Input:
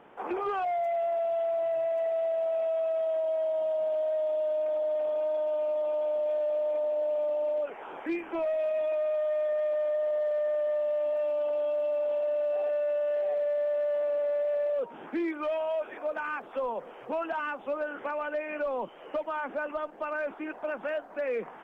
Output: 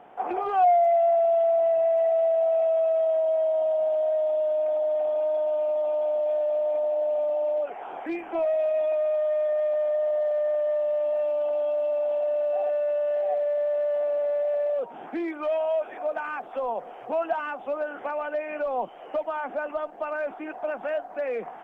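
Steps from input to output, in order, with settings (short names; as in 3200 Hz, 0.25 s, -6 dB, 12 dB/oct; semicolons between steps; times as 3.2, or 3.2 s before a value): bell 730 Hz +12.5 dB 0.32 oct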